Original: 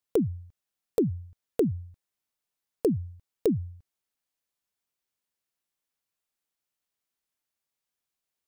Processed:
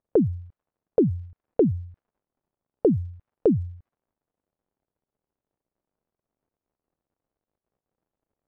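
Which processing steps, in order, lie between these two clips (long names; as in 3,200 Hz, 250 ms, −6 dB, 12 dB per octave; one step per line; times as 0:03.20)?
surface crackle 120 per second −60 dBFS
low-pass that shuts in the quiet parts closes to 650 Hz, open at −22.5 dBFS
level +5 dB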